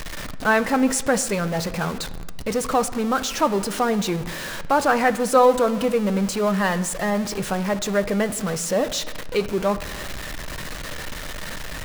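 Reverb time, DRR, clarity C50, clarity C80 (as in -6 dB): 1.4 s, 10.0 dB, 15.0 dB, 16.5 dB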